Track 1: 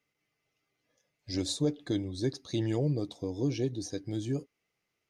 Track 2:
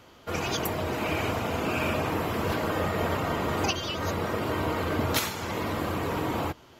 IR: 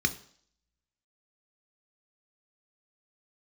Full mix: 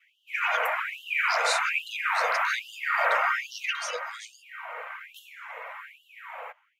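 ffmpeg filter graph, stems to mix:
-filter_complex "[0:a]volume=0.708[s0];[1:a]highshelf=f=3200:t=q:w=3:g=-13,volume=0.562,afade=t=out:st=3.53:d=0.58:silence=0.251189[s1];[s0][s1]amix=inputs=2:normalize=0,adynamicequalizer=threshold=0.00251:dfrequency=1400:dqfactor=3.1:tfrequency=1400:tqfactor=3.1:attack=5:release=100:ratio=0.375:range=3.5:mode=boostabove:tftype=bell,dynaudnorm=f=120:g=5:m=2.51,afftfilt=real='re*gte(b*sr/1024,440*pow(2800/440,0.5+0.5*sin(2*PI*1.2*pts/sr)))':imag='im*gte(b*sr/1024,440*pow(2800/440,0.5+0.5*sin(2*PI*1.2*pts/sr)))':win_size=1024:overlap=0.75"

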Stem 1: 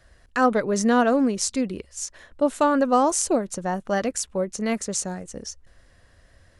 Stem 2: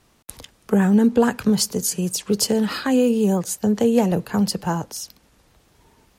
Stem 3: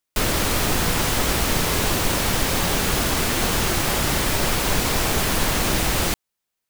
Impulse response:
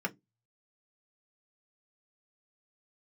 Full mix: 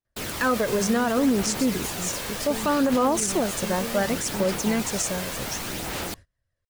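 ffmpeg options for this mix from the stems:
-filter_complex "[0:a]equalizer=f=120:w=3.9:g=8.5,bandreject=f=760:w=12,adelay=50,volume=1.06[s0];[1:a]acompressor=threshold=0.0562:ratio=6,volume=0.447[s1];[2:a]highpass=f=160:p=1,bandreject=f=1100:w=21,volume=0.316[s2];[s0][s2]amix=inputs=2:normalize=0,aphaser=in_gain=1:out_gain=1:delay=1.9:decay=0.33:speed=0.67:type=sinusoidal,alimiter=limit=0.2:level=0:latency=1:release=42,volume=1[s3];[s1][s3]amix=inputs=2:normalize=0,agate=range=0.0398:threshold=0.00891:ratio=16:detection=peak"

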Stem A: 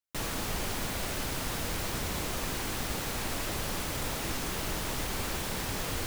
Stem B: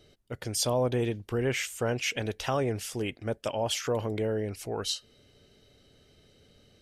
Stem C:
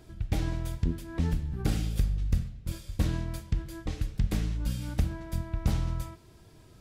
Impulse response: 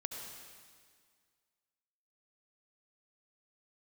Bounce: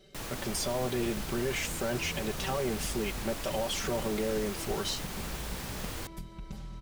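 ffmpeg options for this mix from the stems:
-filter_complex "[0:a]volume=0.531[s0];[1:a]volume=0.841[s1];[2:a]acompressor=threshold=0.0178:ratio=8,adelay=850,volume=0.596[s2];[s1][s2]amix=inputs=2:normalize=0,aecho=1:1:5.2:0.94,alimiter=limit=0.0631:level=0:latency=1,volume=1[s3];[s0][s3]amix=inputs=2:normalize=0"

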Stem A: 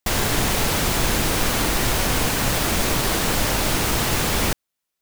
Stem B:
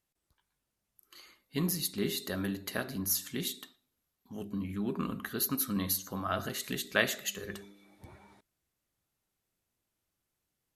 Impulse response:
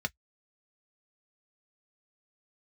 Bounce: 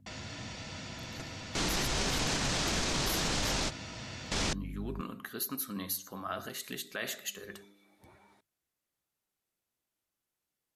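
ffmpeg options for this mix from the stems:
-filter_complex "[0:a]lowpass=f=6900:w=0.5412,lowpass=f=6900:w=1.3066,acrossover=split=280|3000[s0][s1][s2];[s1]acompressor=threshold=0.0224:ratio=3[s3];[s0][s3][s2]amix=inputs=3:normalize=0,aeval=exprs='val(0)+0.02*(sin(2*PI*50*n/s)+sin(2*PI*2*50*n/s)/2+sin(2*PI*3*50*n/s)/3+sin(2*PI*4*50*n/s)/4+sin(2*PI*5*50*n/s)/5)':c=same,volume=1.26,asplit=2[s4][s5];[s5]volume=0.0794[s6];[1:a]bandreject=f=50:t=h:w=6,bandreject=f=100:t=h:w=6,bandreject=f=150:t=h:w=6,volume=0.708,asplit=2[s7][s8];[s8]apad=whole_len=221055[s9];[s4][s9]sidechaingate=range=0.0224:threshold=0.00251:ratio=16:detection=peak[s10];[2:a]atrim=start_sample=2205[s11];[s6][s11]afir=irnorm=-1:irlink=0[s12];[s10][s7][s12]amix=inputs=3:normalize=0,lowshelf=f=200:g=-8,alimiter=limit=0.075:level=0:latency=1:release=36"

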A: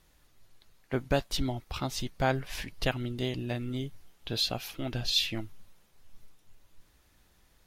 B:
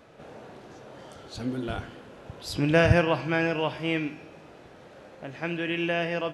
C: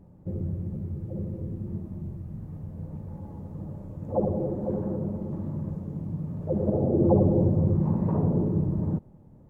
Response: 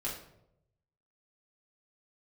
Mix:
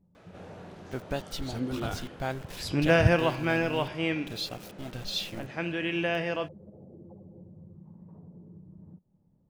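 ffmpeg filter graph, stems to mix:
-filter_complex "[0:a]aeval=exprs='val(0)*gte(abs(val(0)),0.0126)':c=same,volume=0.531[s0];[1:a]adelay=150,volume=0.841[s1];[2:a]equalizer=f=180:w=4.2:g=8.5,acompressor=threshold=0.0355:ratio=8,volume=0.133[s2];[s0][s1][s2]amix=inputs=3:normalize=0"

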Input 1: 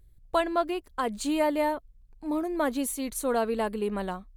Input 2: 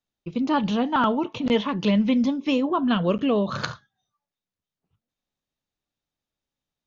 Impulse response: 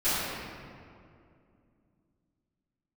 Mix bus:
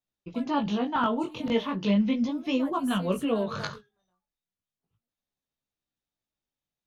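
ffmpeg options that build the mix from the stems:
-filter_complex "[0:a]volume=0.299,afade=t=in:st=2.13:d=0.79:silence=0.375837[s0];[1:a]volume=0.794,asplit=2[s1][s2];[s2]apad=whole_len=192388[s3];[s0][s3]sidechaingate=range=0.0224:threshold=0.01:ratio=16:detection=peak[s4];[s4][s1]amix=inputs=2:normalize=0,flanger=delay=15:depth=7.3:speed=0.36"

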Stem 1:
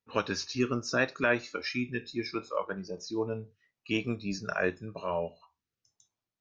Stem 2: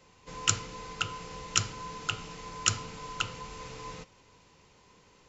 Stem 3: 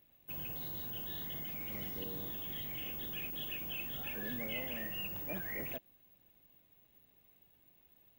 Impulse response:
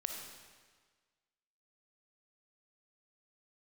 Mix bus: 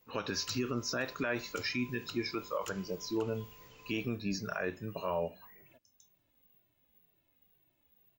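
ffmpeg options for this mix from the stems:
-filter_complex "[0:a]volume=1.06[s0];[1:a]volume=11.2,asoftclip=hard,volume=0.0891,volume=0.178[s1];[2:a]alimiter=level_in=5.31:limit=0.0631:level=0:latency=1:release=432,volume=0.188,acompressor=threshold=0.00224:ratio=4,asplit=2[s2][s3];[s3]adelay=2.1,afreqshift=-2[s4];[s2][s4]amix=inputs=2:normalize=1,volume=0.841[s5];[s0][s1][s5]amix=inputs=3:normalize=0,alimiter=limit=0.0631:level=0:latency=1:release=52"

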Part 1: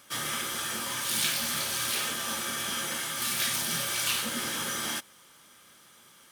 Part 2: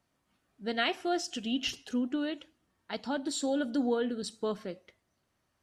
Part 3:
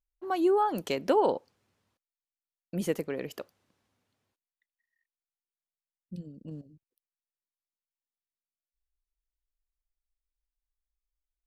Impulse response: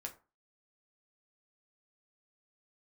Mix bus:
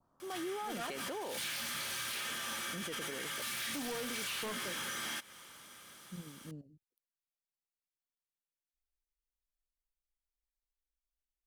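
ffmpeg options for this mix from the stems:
-filter_complex "[0:a]adelay=200,volume=1.06[s0];[1:a]highshelf=f=1600:t=q:w=3:g=-12,volume=1.26,asplit=3[s1][s2][s3];[s1]atrim=end=1.02,asetpts=PTS-STARTPTS,afade=t=out:st=1.016:d=0.004:c=hsin[s4];[s2]atrim=start=1.02:end=3.69,asetpts=PTS-STARTPTS,volume=0[s5];[s3]atrim=start=3.69,asetpts=PTS-STARTPTS,afade=t=in:d=0.004:c=hsin[s6];[s4][s5][s6]concat=n=3:v=0:a=1[s7];[2:a]volume=0.501[s8];[s0][s7]amix=inputs=2:normalize=0,asoftclip=type=tanh:threshold=0.0447,acompressor=threshold=0.01:ratio=5,volume=1[s9];[s8][s9]amix=inputs=2:normalize=0,adynamicequalizer=threshold=0.00316:dfrequency=2100:dqfactor=0.87:tfrequency=2100:tqfactor=0.87:attack=5:release=100:ratio=0.375:range=3:mode=boostabove:tftype=bell,alimiter=level_in=2.66:limit=0.0631:level=0:latency=1:release=11,volume=0.376"

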